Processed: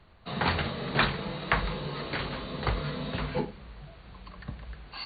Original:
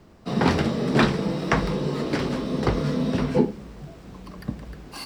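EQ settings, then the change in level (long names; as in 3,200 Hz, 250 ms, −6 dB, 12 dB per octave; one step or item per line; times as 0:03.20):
linear-phase brick-wall low-pass 4,600 Hz
parametric band 280 Hz −15 dB 2.1 octaves
0.0 dB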